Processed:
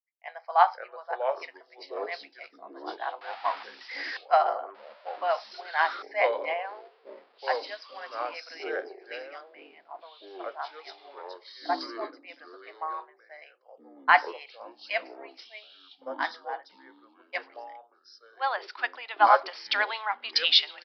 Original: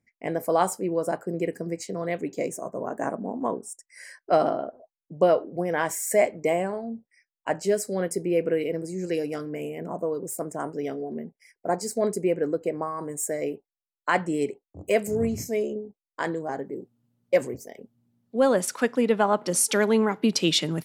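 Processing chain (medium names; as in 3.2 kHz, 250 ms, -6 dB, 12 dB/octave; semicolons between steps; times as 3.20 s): 3.21–4.17 s: jump at every zero crossing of -28 dBFS; elliptic high-pass 750 Hz, stop band 60 dB; ever faster or slower copies 459 ms, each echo -5 st, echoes 3, each echo -6 dB; resampled via 11.025 kHz; three bands expanded up and down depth 70%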